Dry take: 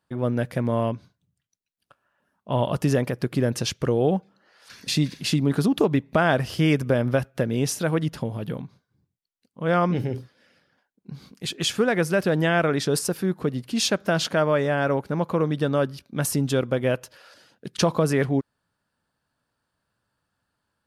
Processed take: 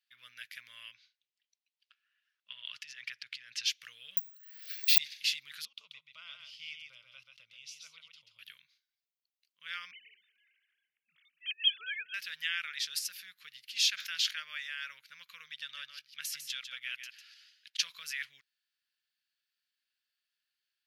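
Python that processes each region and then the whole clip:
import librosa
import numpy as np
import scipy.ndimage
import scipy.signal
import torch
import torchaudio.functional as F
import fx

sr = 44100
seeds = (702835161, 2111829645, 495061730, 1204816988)

y = fx.chain(x, sr, fx.lowpass(hz=5500.0, slope=12),
    fx.over_compress(threshold_db=-26.0, ratio=-1.0), at=(0.94, 3.66))
y = fx.chain(y, sr, fx.peak_eq(hz=600.0, db=11.0, octaves=2.9),
    fx.resample_bad(factor=2, down='none', up='zero_stuff'), at=(4.17, 4.98))
y = fx.chain(y, sr, fx.spacing_loss(db_at_10k=22),
    fx.fixed_phaser(hz=710.0, stages=4),
    fx.echo_single(ms=134, db=-5.0), at=(5.65, 8.39))
y = fx.chain(y, sr, fx.sine_speech(),
    fx.echo_feedback(ms=223, feedback_pct=51, wet_db=-19), at=(9.91, 12.14))
y = fx.chain(y, sr, fx.highpass(hz=51.0, slope=12),
    fx.sustainer(db_per_s=100.0), at=(13.78, 14.31))
y = fx.chain(y, sr, fx.high_shelf(hz=11000.0, db=-8.0),
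    fx.echo_single(ms=150, db=-8.5), at=(15.54, 17.79))
y = scipy.signal.sosfilt(scipy.signal.cheby2(4, 50, 840.0, 'highpass', fs=sr, output='sos'), y)
y = fx.peak_eq(y, sr, hz=8900.0, db=-13.0, octaves=0.79)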